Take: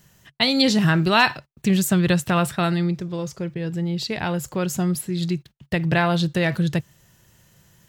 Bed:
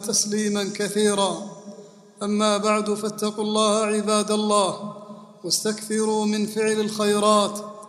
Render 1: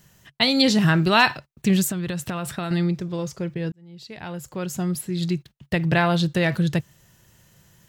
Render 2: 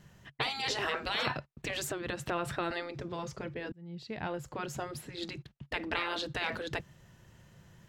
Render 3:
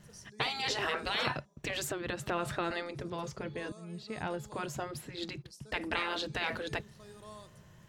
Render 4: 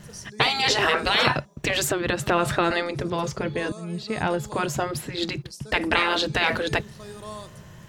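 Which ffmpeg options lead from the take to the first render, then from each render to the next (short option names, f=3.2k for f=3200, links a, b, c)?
-filter_complex "[0:a]asettb=1/sr,asplit=3[a][b][c];[a]atrim=end=1.874[d];[b]atrim=start=1.87:end=2.71,asetpts=PTS-STARTPTS,afade=t=in:d=0.004:c=qsin,afade=t=out:st=0.836:d=0.004:c=qsin,acompressor=threshold=-23dB:ratio=10:attack=3.2:release=140:knee=1:detection=peak[e];[c]atrim=start=2.706[f];[d][e]acrossfade=d=0.004:c1=hsin:c2=qsin[g];[g][f]acrossfade=d=0.004:c1=qsin:c2=hsin,asplit=2[h][i];[h]atrim=end=3.72,asetpts=PTS-STARTPTS,afade=t=out:st=3.716:d=0.004:c=hsin[j];[i]atrim=start=3.72,asetpts=PTS-STARTPTS,afade=t=in:d=1.61[k];[j][k]concat=n=2:v=0:a=1"
-af "afftfilt=real='re*lt(hypot(re,im),0.2)':imag='im*lt(hypot(re,im),0.2)':win_size=1024:overlap=0.75,aemphasis=mode=reproduction:type=75kf"
-filter_complex "[1:a]volume=-32.5dB[a];[0:a][a]amix=inputs=2:normalize=0"
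-af "volume=12dB"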